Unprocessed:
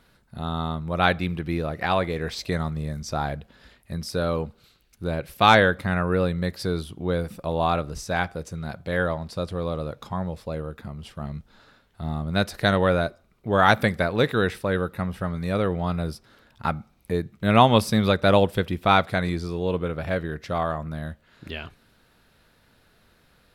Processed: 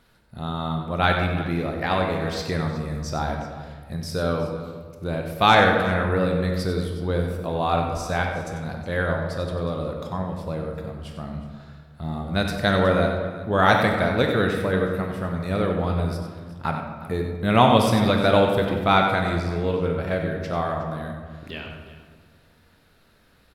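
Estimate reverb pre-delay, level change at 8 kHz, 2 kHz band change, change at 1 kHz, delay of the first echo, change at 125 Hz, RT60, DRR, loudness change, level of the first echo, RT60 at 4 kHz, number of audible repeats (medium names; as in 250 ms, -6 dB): 20 ms, 0.0 dB, +1.0 dB, +1.5 dB, 94 ms, +1.5 dB, 1.7 s, 2.0 dB, +1.0 dB, -9.0 dB, 1.1 s, 2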